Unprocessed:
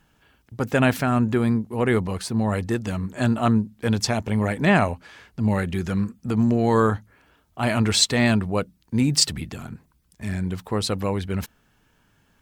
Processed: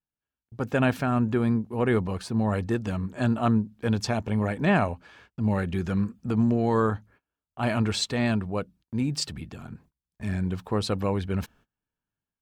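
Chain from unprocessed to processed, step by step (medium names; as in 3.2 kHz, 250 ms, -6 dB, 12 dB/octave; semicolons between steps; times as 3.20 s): level rider gain up to 7.5 dB; treble shelf 4.9 kHz -9.5 dB; band-stop 2 kHz, Q 11; gate -45 dBFS, range -26 dB; trim -8.5 dB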